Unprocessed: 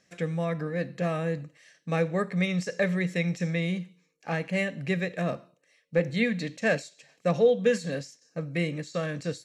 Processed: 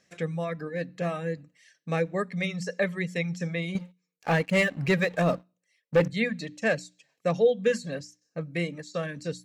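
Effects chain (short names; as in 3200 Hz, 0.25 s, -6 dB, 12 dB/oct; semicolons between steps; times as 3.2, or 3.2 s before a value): reverb removal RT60 0.92 s; notches 60/120/180/240/300 Hz; 3.75–6.08 sample leveller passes 2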